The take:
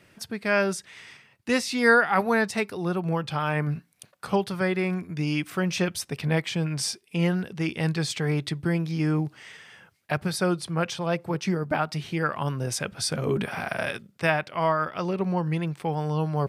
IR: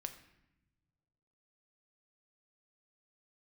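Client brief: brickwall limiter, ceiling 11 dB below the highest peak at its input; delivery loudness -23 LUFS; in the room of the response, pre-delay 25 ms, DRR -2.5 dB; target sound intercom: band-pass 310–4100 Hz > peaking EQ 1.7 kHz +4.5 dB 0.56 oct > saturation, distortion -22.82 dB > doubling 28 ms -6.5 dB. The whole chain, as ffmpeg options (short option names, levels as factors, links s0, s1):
-filter_complex "[0:a]alimiter=limit=0.133:level=0:latency=1,asplit=2[s0][s1];[1:a]atrim=start_sample=2205,adelay=25[s2];[s1][s2]afir=irnorm=-1:irlink=0,volume=1.78[s3];[s0][s3]amix=inputs=2:normalize=0,highpass=310,lowpass=4100,equalizer=f=1700:t=o:w=0.56:g=4.5,asoftclip=threshold=0.251,asplit=2[s4][s5];[s5]adelay=28,volume=0.473[s6];[s4][s6]amix=inputs=2:normalize=0,volume=1.41"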